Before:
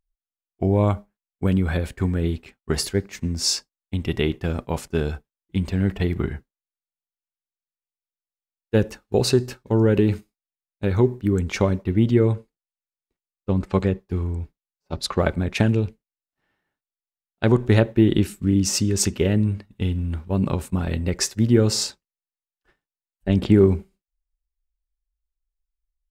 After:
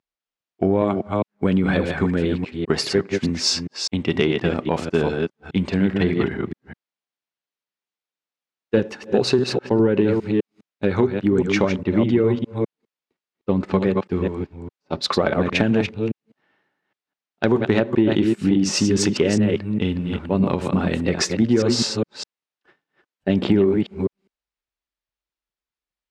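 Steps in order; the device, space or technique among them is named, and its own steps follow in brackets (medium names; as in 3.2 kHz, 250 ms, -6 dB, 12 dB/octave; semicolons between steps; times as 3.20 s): chunks repeated in reverse 204 ms, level -5.5 dB; AM radio (band-pass 180–4400 Hz; compression 5:1, threshold -20 dBFS, peak gain reduction 9.5 dB; saturation -10 dBFS, distortion -26 dB); 9.58–10.03 s: treble shelf 5.9 kHz -10 dB; trim +7 dB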